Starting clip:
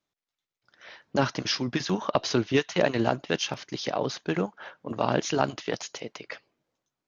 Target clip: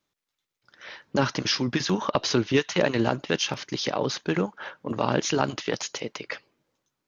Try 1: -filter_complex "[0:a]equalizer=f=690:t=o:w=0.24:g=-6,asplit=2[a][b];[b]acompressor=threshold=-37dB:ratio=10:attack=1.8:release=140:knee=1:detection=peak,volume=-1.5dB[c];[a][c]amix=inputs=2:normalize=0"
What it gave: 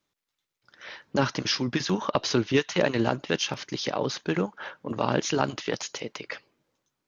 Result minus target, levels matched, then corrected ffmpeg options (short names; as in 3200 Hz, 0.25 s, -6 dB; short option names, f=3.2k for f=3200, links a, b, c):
compressor: peak gain reduction +7 dB
-filter_complex "[0:a]equalizer=f=690:t=o:w=0.24:g=-6,asplit=2[a][b];[b]acompressor=threshold=-29dB:ratio=10:attack=1.8:release=140:knee=1:detection=peak,volume=-1.5dB[c];[a][c]amix=inputs=2:normalize=0"